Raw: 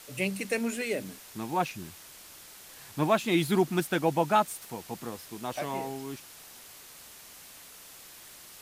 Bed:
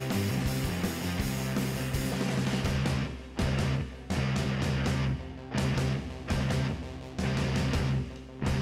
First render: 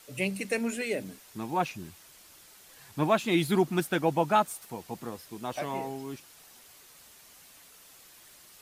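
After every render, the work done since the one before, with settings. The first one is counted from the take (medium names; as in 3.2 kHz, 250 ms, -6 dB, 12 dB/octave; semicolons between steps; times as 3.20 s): noise reduction 6 dB, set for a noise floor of -50 dBFS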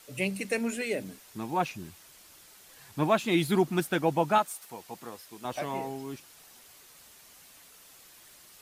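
4.38–5.45 s: bass shelf 350 Hz -10.5 dB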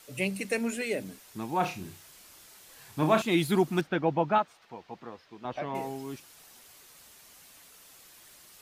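1.58–3.22 s: flutter echo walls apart 5.5 m, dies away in 0.28 s; 3.81–5.75 s: distance through air 230 m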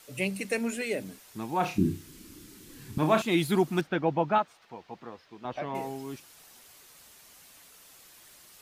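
1.78–2.98 s: resonant low shelf 440 Hz +13.5 dB, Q 3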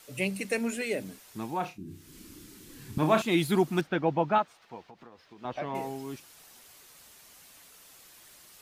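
1.46–2.18 s: dip -18.5 dB, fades 0.32 s; 4.80–5.41 s: compression, threshold -46 dBFS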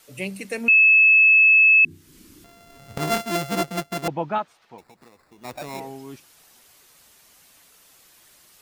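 0.68–1.85 s: bleep 2.6 kHz -10.5 dBFS; 2.44–4.08 s: sorted samples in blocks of 64 samples; 4.78–5.80 s: sample-rate reducer 3.1 kHz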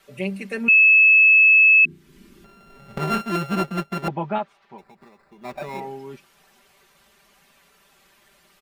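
tone controls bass 0 dB, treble -12 dB; comb 5.1 ms, depth 78%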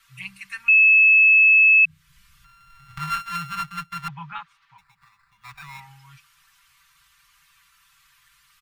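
elliptic band-stop 130–1100 Hz, stop band 40 dB; dynamic bell 170 Hz, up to +5 dB, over -57 dBFS, Q 7.9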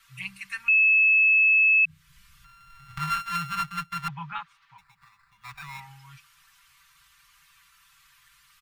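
peak limiter -15.5 dBFS, peak gain reduction 5 dB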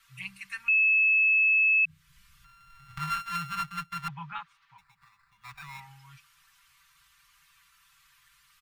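trim -3.5 dB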